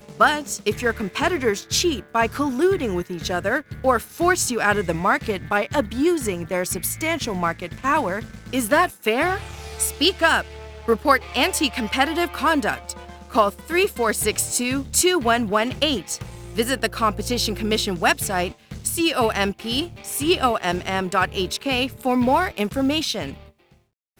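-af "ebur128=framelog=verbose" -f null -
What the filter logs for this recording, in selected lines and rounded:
Integrated loudness:
  I:         -21.7 LUFS
  Threshold: -31.9 LUFS
Loudness range:
  LRA:         2.1 LU
  Threshold: -41.8 LUFS
  LRA low:   -22.8 LUFS
  LRA high:  -20.7 LUFS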